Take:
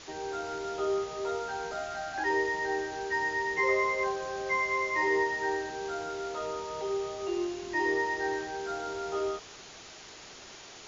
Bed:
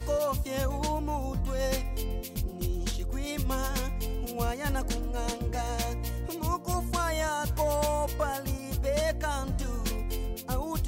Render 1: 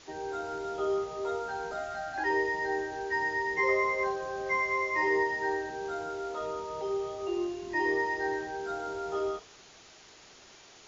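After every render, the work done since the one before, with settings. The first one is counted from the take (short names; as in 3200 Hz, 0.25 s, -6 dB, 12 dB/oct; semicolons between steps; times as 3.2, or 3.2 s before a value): noise print and reduce 6 dB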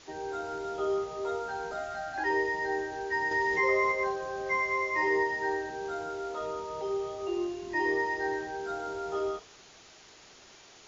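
3.31–3.92 fast leveller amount 50%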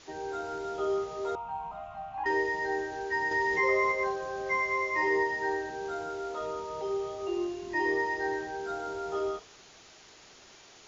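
1.35–2.26 EQ curve 200 Hz 0 dB, 390 Hz -24 dB, 1100 Hz +11 dB, 1500 Hz -22 dB, 2600 Hz -1 dB, 4500 Hz -22 dB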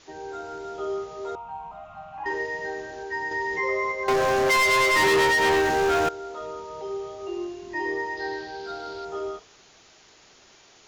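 1.8–3.03 flutter echo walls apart 8 m, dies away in 0.64 s; 4.08–6.09 sample leveller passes 5; 8.17–9.05 synth low-pass 4500 Hz, resonance Q 4.4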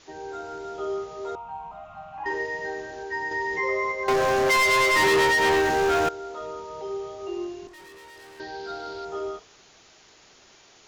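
7.67–8.4 tube stage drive 46 dB, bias 0.7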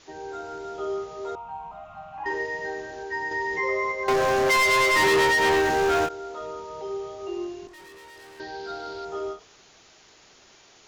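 ending taper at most 230 dB/s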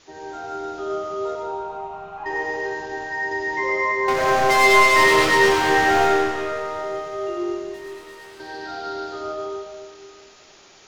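thin delay 0.184 s, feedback 78%, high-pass 1700 Hz, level -21 dB; digital reverb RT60 2.2 s, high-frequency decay 0.85×, pre-delay 40 ms, DRR -2.5 dB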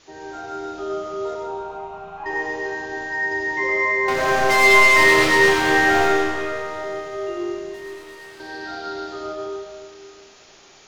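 flutter echo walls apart 6 m, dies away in 0.25 s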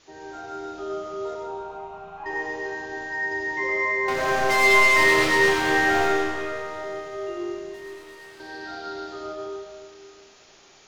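gain -4 dB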